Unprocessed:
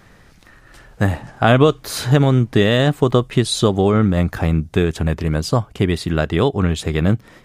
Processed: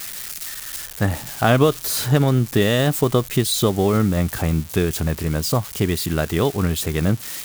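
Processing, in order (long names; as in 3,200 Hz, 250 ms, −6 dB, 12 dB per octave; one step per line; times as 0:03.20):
spike at every zero crossing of −17 dBFS
level −3 dB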